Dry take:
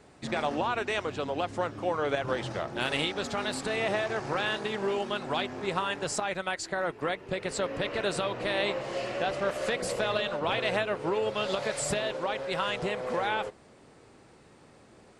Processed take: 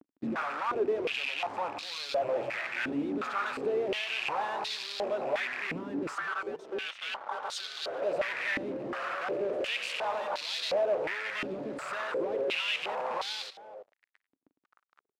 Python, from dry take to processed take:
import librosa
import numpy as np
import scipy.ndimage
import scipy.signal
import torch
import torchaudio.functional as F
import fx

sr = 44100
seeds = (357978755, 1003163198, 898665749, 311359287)

p1 = fx.rattle_buzz(x, sr, strikes_db=-41.0, level_db=-24.0)
p2 = fx.vibrato(p1, sr, rate_hz=8.2, depth_cents=21.0)
p3 = fx.fuzz(p2, sr, gain_db=45.0, gate_db=-47.0)
p4 = fx.ring_mod(p3, sr, carrier_hz=970.0, at=(6.15, 8.02))
p5 = fx.vibrato(p4, sr, rate_hz=1.4, depth_cents=13.0)
p6 = p5 + fx.echo_single(p5, sr, ms=323, db=-16.5, dry=0)
p7 = fx.filter_held_bandpass(p6, sr, hz=2.8, low_hz=280.0, high_hz=4100.0)
y = p7 * librosa.db_to_amplitude(-8.0)